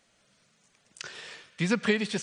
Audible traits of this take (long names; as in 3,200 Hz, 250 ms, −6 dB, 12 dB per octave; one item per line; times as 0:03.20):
background noise floor −68 dBFS
spectral slope −4.5 dB per octave